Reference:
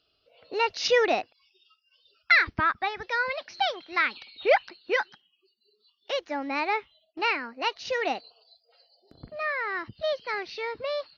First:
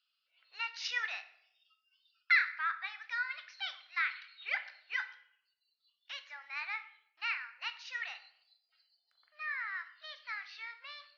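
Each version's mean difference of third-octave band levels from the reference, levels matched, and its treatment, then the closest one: 7.5 dB: HPF 1500 Hz 24 dB/oct; high shelf 2300 Hz -11.5 dB; shoebox room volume 150 m³, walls mixed, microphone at 0.35 m; gain -2 dB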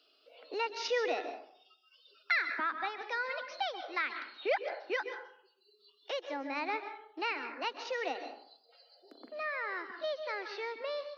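5.5 dB: steep high-pass 250 Hz 48 dB/oct; plate-style reverb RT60 0.54 s, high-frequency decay 0.5×, pre-delay 0.115 s, DRR 9 dB; three-band squash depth 40%; gain -8.5 dB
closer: second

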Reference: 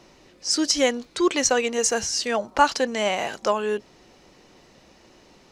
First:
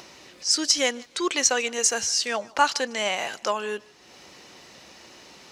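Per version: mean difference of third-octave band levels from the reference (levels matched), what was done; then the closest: 4.5 dB: HPF 67 Hz; tilt shelf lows -5 dB, about 870 Hz; upward compressor, threshold -36 dBFS; on a send: thinning echo 0.152 s, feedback 29%, level -24 dB; on the sum: gain -3 dB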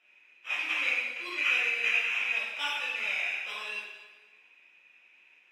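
10.5 dB: sample-and-hold 10×; flange 1.9 Hz, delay 4.3 ms, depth 7.8 ms, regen -82%; band-pass 2500 Hz, Q 12; plate-style reverb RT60 1.3 s, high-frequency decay 0.95×, DRR -8.5 dB; gain +6 dB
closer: first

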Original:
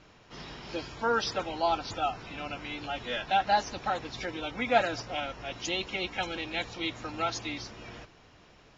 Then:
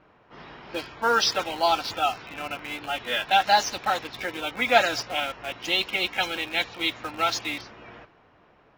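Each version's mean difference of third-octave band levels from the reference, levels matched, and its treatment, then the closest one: 6.0 dB: low-pass opened by the level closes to 1200 Hz, open at -22.5 dBFS; tilt +2.5 dB/oct; in parallel at -10 dB: bit-crush 6-bit; on the sum: gain +3.5 dB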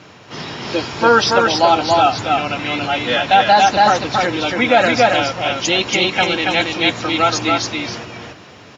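2.5 dB: HPF 88 Hz 24 dB/oct; on a send: echo 0.28 s -3 dB; on the sum: maximiser +16.5 dB; gain -1 dB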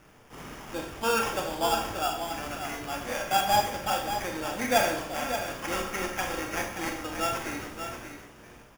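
9.0 dB: sample-rate reducer 4100 Hz, jitter 0%; echo 0.581 s -8.5 dB; Schroeder reverb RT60 0.56 s, combs from 28 ms, DRR 3 dB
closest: second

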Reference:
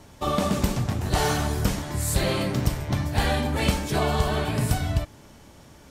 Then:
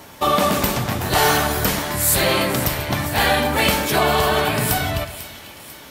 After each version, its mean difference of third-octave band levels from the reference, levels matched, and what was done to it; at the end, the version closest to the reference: 5.0 dB: bell 7400 Hz -13.5 dB 2.1 oct; in parallel at -2 dB: limiter -20.5 dBFS, peak gain reduction 10 dB; on the sum: tilt +3.5 dB/oct; split-band echo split 1900 Hz, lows 0.12 s, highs 0.495 s, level -13 dB; gain +7 dB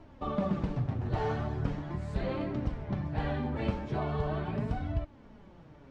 8.5 dB: in parallel at 0 dB: compressor, threshold -32 dBFS, peak gain reduction 15 dB; on the sum: bit-crush 8-bit; flange 0.4 Hz, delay 2.9 ms, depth 6.4 ms, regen +32%; tape spacing loss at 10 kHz 39 dB; gain -4.5 dB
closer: first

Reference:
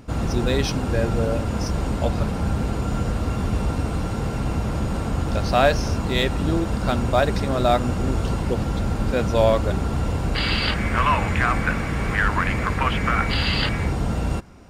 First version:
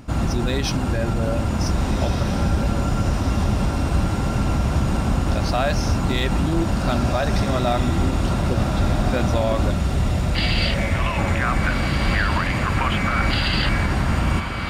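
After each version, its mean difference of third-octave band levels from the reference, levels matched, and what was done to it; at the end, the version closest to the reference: 3.0 dB: limiter -15 dBFS, peak gain reduction 9.5 dB; bell 460 Hz -9.5 dB 0.25 oct; spectral gain 9.71–11.19, 210–1700 Hz -8 dB; on a send: diffused feedback echo 1.578 s, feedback 60%, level -6 dB; on the sum: gain +3 dB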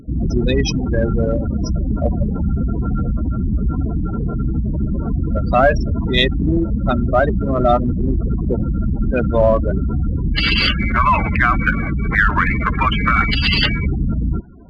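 14.0 dB: thirty-one-band EQ 100 Hz -8 dB, 500 Hz -4 dB, 800 Hz -3 dB; spectral gate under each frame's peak -15 dB strong; in parallel at -12 dB: one-sided clip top -23.5 dBFS; on the sum: dynamic EQ 3000 Hz, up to +5 dB, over -37 dBFS, Q 0.92; gain +4.5 dB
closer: first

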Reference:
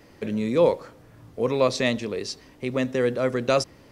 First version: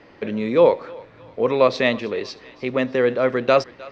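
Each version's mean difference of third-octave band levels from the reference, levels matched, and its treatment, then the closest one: 4.0 dB: Bessel low-pass 3000 Hz, order 4; low shelf 230 Hz -11.5 dB; on a send: thinning echo 0.31 s, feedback 53%, high-pass 710 Hz, level -19 dB; on the sum: gain +7 dB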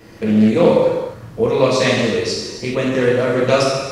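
6.5 dB: in parallel at -1 dB: compressor, threshold -30 dBFS, peak gain reduction 15.5 dB; on the sum: non-linear reverb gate 0.45 s falling, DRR -5.5 dB; Doppler distortion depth 0.24 ms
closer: first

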